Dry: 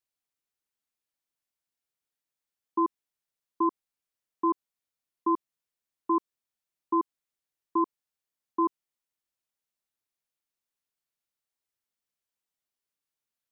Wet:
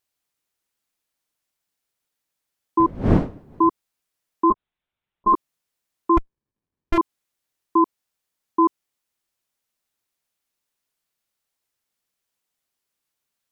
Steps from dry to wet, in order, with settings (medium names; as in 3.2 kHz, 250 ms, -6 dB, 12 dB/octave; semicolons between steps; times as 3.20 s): 2.79–3.68 s: wind noise 290 Hz -34 dBFS; 4.50–5.34 s: monotone LPC vocoder at 8 kHz 210 Hz; vibrato 3.8 Hz 18 cents; 6.17–6.98 s: sliding maximum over 65 samples; trim +8.5 dB